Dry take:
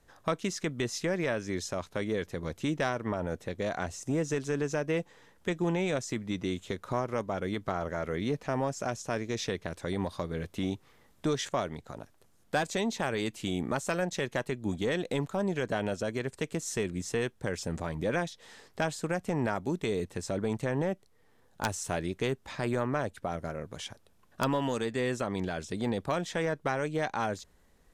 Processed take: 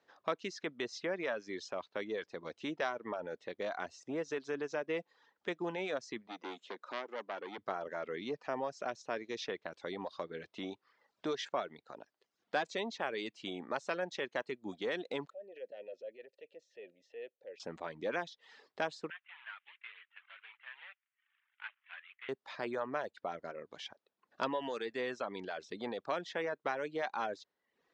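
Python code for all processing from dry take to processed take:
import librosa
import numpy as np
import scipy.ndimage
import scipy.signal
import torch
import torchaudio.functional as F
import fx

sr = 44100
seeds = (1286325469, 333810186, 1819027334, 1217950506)

y = fx.chain(x, sr, fx.highpass(hz=210.0, slope=24),
    fx.transformer_sat(knee_hz=2000.0), at=(6.27, 7.58))
y = fx.chain(y, sr, fx.transient(attack_db=-6, sustain_db=7),
    fx.vowel_filter(vowel='e'),
    fx.peak_eq(hz=1600.0, db=-12.0, octaves=0.49), at=(15.3, 17.6))
y = fx.chain(y, sr, fx.cvsd(bps=16000),
    fx.highpass(hz=1500.0, slope=24),
    fx.doppler_dist(depth_ms=0.4), at=(19.1, 22.29))
y = scipy.signal.sosfilt(scipy.signal.butter(2, 340.0, 'highpass', fs=sr, output='sos'), y)
y = fx.dereverb_blind(y, sr, rt60_s=0.64)
y = scipy.signal.sosfilt(scipy.signal.butter(4, 5000.0, 'lowpass', fs=sr, output='sos'), y)
y = F.gain(torch.from_numpy(y), -4.0).numpy()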